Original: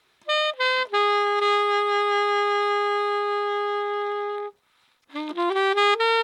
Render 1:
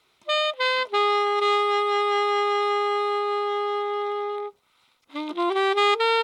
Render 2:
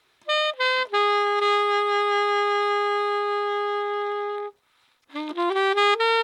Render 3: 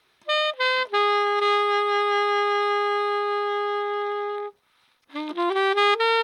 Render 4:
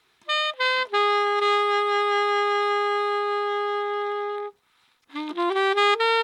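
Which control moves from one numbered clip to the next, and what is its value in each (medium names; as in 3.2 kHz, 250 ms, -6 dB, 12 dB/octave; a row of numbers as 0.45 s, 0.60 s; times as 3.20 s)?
band-stop, frequency: 1.7 kHz, 190 Hz, 7.3 kHz, 580 Hz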